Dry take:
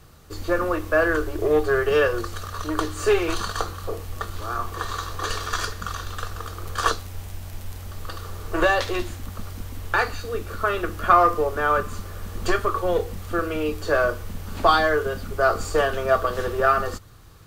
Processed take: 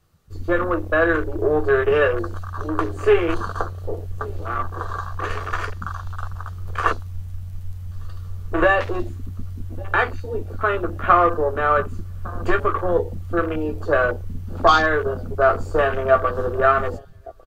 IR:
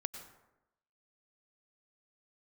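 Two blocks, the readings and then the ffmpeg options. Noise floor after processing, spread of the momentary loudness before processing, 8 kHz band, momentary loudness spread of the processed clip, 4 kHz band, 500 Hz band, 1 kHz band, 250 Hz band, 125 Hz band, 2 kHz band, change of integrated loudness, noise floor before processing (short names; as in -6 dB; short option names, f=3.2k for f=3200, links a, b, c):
-34 dBFS, 16 LU, under -10 dB, 16 LU, -3.5 dB, +2.5 dB, +2.0 dB, +2.5 dB, +4.5 dB, +2.0 dB, +2.0 dB, -38 dBFS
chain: -filter_complex "[0:a]asplit=2[a][b];[b]adelay=12,volume=-8.5dB[c];[a][c]amix=inputs=2:normalize=0,asplit=2[d][e];[e]aecho=0:1:1154|2308|3462:0.1|0.033|0.0109[f];[d][f]amix=inputs=2:normalize=0,afwtdn=0.0355,volume=2dB"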